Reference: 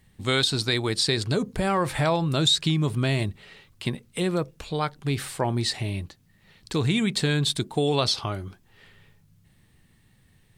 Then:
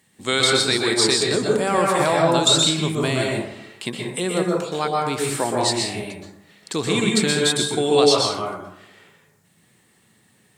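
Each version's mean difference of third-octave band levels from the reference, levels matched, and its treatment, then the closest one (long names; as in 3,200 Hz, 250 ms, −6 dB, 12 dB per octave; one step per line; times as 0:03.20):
8.0 dB: high-pass filter 230 Hz 12 dB per octave
parametric band 7,700 Hz +7.5 dB 0.63 octaves
dense smooth reverb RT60 0.83 s, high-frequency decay 0.4×, pre-delay 110 ms, DRR −2 dB
level +2.5 dB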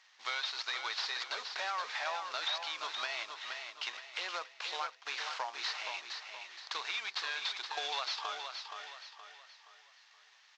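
17.0 dB: variable-slope delta modulation 32 kbit/s
high-pass filter 840 Hz 24 dB per octave
downward compressor 4 to 1, threshold −39 dBFS, peak gain reduction 13.5 dB
repeating echo 472 ms, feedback 40%, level −6.5 dB
level +3 dB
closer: first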